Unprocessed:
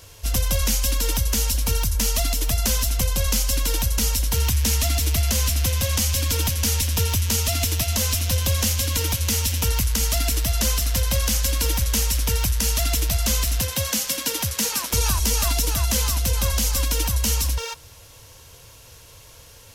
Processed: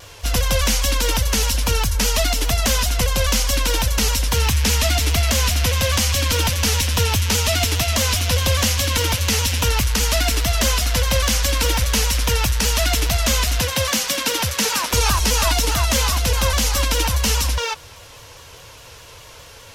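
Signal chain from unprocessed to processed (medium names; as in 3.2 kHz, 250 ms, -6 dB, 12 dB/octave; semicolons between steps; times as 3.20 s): overdrive pedal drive 6 dB, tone 2.7 kHz, clips at -10.5 dBFS; vibrato with a chosen wave saw down 4.9 Hz, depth 100 cents; trim +8 dB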